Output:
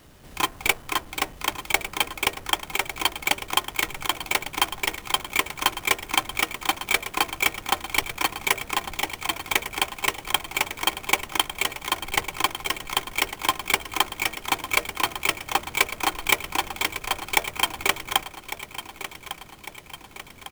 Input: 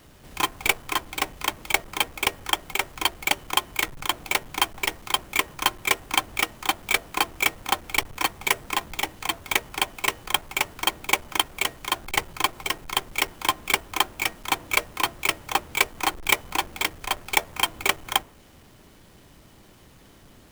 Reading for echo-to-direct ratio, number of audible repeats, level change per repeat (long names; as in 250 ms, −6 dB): −11.0 dB, 5, −5.5 dB